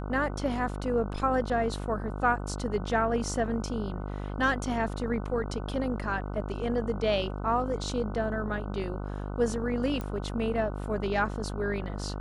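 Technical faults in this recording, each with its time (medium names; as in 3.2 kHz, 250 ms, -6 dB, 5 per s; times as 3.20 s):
buzz 50 Hz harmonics 30 -35 dBFS
10.01 s: pop -22 dBFS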